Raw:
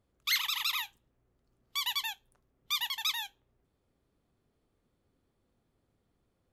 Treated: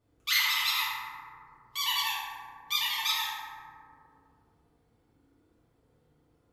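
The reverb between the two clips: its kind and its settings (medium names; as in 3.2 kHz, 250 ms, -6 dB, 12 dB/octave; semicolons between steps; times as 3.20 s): FDN reverb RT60 2.1 s, low-frequency decay 0.9×, high-frequency decay 0.35×, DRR -10 dB; trim -3.5 dB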